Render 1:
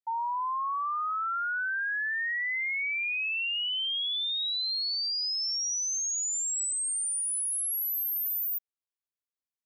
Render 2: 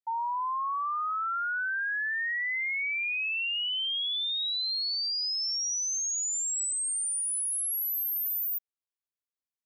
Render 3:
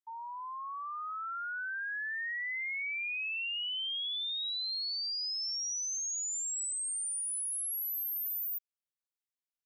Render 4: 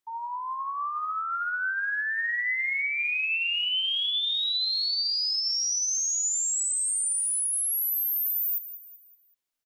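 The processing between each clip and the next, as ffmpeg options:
ffmpeg -i in.wav -af anull out.wav
ffmpeg -i in.wav -af "highpass=1300,volume=-5dB" out.wav
ffmpeg -i in.wav -af "aecho=1:1:190|380|570|760:0.224|0.0918|0.0376|0.0154,aphaser=in_gain=1:out_gain=1:delay=3.3:decay=0.2:speed=1.2:type=sinusoidal,volume=8dB" out.wav

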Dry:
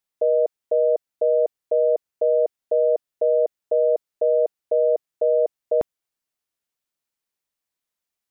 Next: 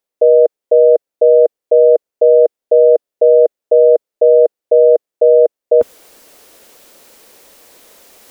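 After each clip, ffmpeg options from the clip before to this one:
ffmpeg -i in.wav -af "equalizer=frequency=125:width_type=o:width=1:gain=-7,equalizer=frequency=250:width_type=o:width=1:gain=4,equalizer=frequency=500:width_type=o:width=1:gain=12,areverse,acompressor=mode=upward:threshold=-14dB:ratio=2.5,areverse" out.wav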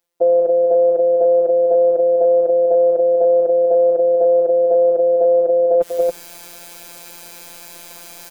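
ffmpeg -i in.wav -af "alimiter=limit=-10dB:level=0:latency=1:release=78,afftfilt=real='hypot(re,im)*cos(PI*b)':imag='0':win_size=1024:overlap=0.75,aecho=1:1:192.4|279.9:0.355|0.708,volume=8.5dB" out.wav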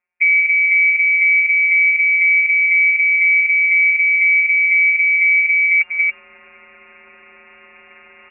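ffmpeg -i in.wav -af "lowpass=frequency=2400:width_type=q:width=0.5098,lowpass=frequency=2400:width_type=q:width=0.6013,lowpass=frequency=2400:width_type=q:width=0.9,lowpass=frequency=2400:width_type=q:width=2.563,afreqshift=-2800" out.wav

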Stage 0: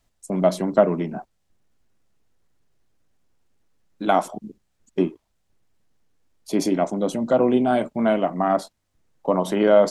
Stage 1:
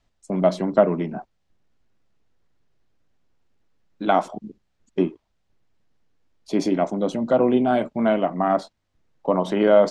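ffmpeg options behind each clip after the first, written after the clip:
ffmpeg -i in.wav -af "lowpass=5200" out.wav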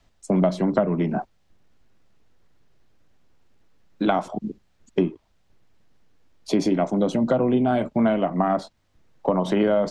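ffmpeg -i in.wav -filter_complex "[0:a]acrossover=split=150[link_01][link_02];[link_02]acompressor=threshold=-27dB:ratio=5[link_03];[link_01][link_03]amix=inputs=2:normalize=0,volume=7.5dB" out.wav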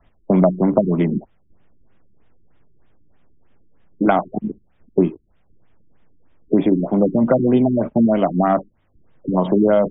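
ffmpeg -i in.wav -af "afftfilt=real='re*lt(b*sr/1024,380*pow(3800/380,0.5+0.5*sin(2*PI*3.2*pts/sr)))':imag='im*lt(b*sr/1024,380*pow(3800/380,0.5+0.5*sin(2*PI*3.2*pts/sr)))':win_size=1024:overlap=0.75,volume=5.5dB" out.wav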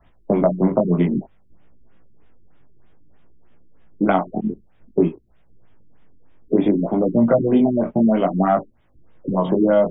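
ffmpeg -i in.wav -filter_complex "[0:a]asplit=2[link_01][link_02];[link_02]acompressor=threshold=-23dB:ratio=6,volume=-2dB[link_03];[link_01][link_03]amix=inputs=2:normalize=0,flanger=delay=16.5:depth=6.4:speed=0.56" out.wav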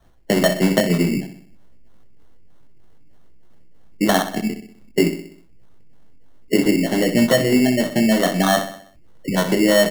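ffmpeg -i in.wav -filter_complex "[0:a]asplit=2[link_01][link_02];[link_02]adelay=63,lowpass=frequency=3000:poles=1,volume=-10dB,asplit=2[link_03][link_04];[link_04]adelay=63,lowpass=frequency=3000:poles=1,volume=0.51,asplit=2[link_05][link_06];[link_06]adelay=63,lowpass=frequency=3000:poles=1,volume=0.51,asplit=2[link_07][link_08];[link_08]adelay=63,lowpass=frequency=3000:poles=1,volume=0.51,asplit=2[link_09][link_10];[link_10]adelay=63,lowpass=frequency=3000:poles=1,volume=0.51,asplit=2[link_11][link_12];[link_12]adelay=63,lowpass=frequency=3000:poles=1,volume=0.51[link_13];[link_01][link_03][link_05][link_07][link_09][link_11][link_13]amix=inputs=7:normalize=0,acrusher=samples=18:mix=1:aa=0.000001" out.wav

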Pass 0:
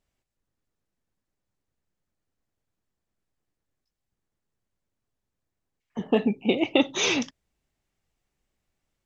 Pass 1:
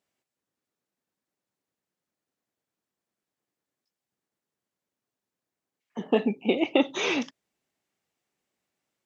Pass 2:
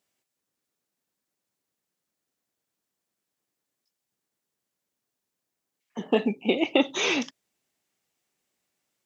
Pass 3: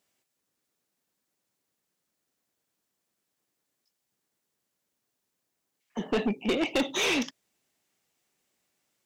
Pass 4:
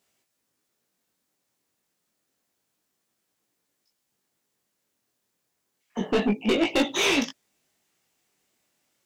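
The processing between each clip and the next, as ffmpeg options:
ffmpeg -i in.wav -filter_complex "[0:a]highpass=210,acrossover=split=2900[link_01][link_02];[link_02]acompressor=threshold=-37dB:ratio=4:attack=1:release=60[link_03];[link_01][link_03]amix=inputs=2:normalize=0" out.wav
ffmpeg -i in.wav -af "highshelf=frequency=3400:gain=7" out.wav
ffmpeg -i in.wav -af "asoftclip=type=tanh:threshold=-24dB,volume=2.5dB" out.wav
ffmpeg -i in.wav -af "flanger=delay=17.5:depth=6.8:speed=0.29,volume=7dB" out.wav

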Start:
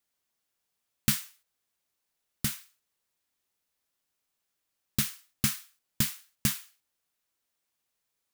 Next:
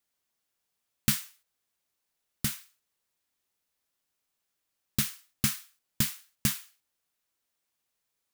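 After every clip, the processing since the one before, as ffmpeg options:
ffmpeg -i in.wav -af anull out.wav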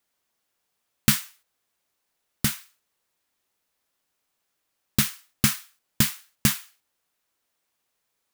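ffmpeg -i in.wav -filter_complex "[0:a]equalizer=frequency=750:width=0.32:gain=4,asplit=2[link_01][link_02];[link_02]acrusher=bits=4:mix=0:aa=0.5,volume=-12dB[link_03];[link_01][link_03]amix=inputs=2:normalize=0,volume=3.5dB" out.wav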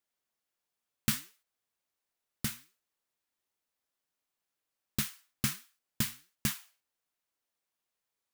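ffmpeg -i in.wav -af "flanger=delay=2.8:depth=6.2:regen=86:speed=1.4:shape=sinusoidal,volume=-6dB" out.wav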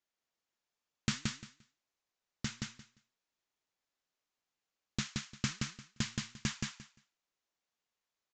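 ffmpeg -i in.wav -filter_complex "[0:a]aresample=16000,aresample=44100,asplit=2[link_01][link_02];[link_02]aecho=0:1:174|348|522:0.708|0.12|0.0205[link_03];[link_01][link_03]amix=inputs=2:normalize=0,volume=-2dB" out.wav

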